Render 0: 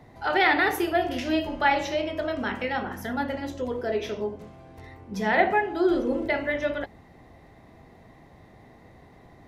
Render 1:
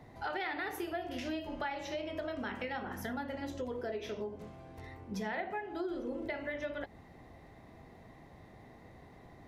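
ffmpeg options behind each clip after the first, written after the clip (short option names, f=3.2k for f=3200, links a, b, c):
-af "acompressor=threshold=-32dB:ratio=6,volume=-3.5dB"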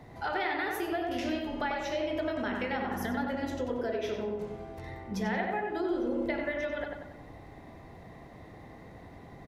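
-filter_complex "[0:a]asplit=2[a][b];[b]adelay=94,lowpass=f=2.6k:p=1,volume=-3dB,asplit=2[c][d];[d]adelay=94,lowpass=f=2.6k:p=1,volume=0.54,asplit=2[e][f];[f]adelay=94,lowpass=f=2.6k:p=1,volume=0.54,asplit=2[g][h];[h]adelay=94,lowpass=f=2.6k:p=1,volume=0.54,asplit=2[i][j];[j]adelay=94,lowpass=f=2.6k:p=1,volume=0.54,asplit=2[k][l];[l]adelay=94,lowpass=f=2.6k:p=1,volume=0.54,asplit=2[m][n];[n]adelay=94,lowpass=f=2.6k:p=1,volume=0.54[o];[a][c][e][g][i][k][m][o]amix=inputs=8:normalize=0,volume=4dB"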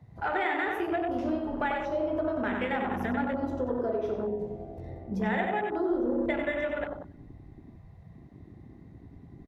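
-af "afwtdn=0.0126,volume=3dB"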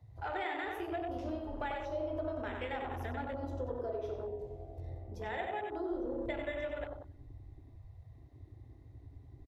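-af "firequalizer=gain_entry='entry(110,0);entry(190,-28);entry(270,-10);entry(570,-7);entry(1500,-11);entry(3600,-4)':delay=0.05:min_phase=1"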